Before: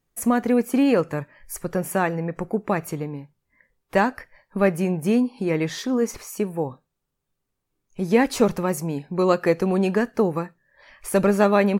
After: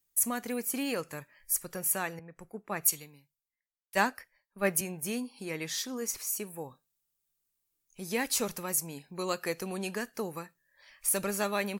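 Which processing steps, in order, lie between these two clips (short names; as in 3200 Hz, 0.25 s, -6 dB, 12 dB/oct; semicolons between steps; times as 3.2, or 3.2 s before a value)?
pre-emphasis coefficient 0.9; 2.19–4.81 three-band expander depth 100%; gain +3.5 dB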